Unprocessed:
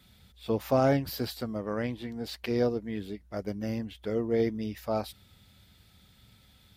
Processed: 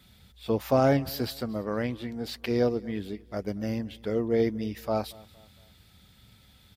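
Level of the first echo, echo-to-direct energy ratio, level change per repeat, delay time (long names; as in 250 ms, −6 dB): −23.0 dB, −22.0 dB, −7.5 dB, 231 ms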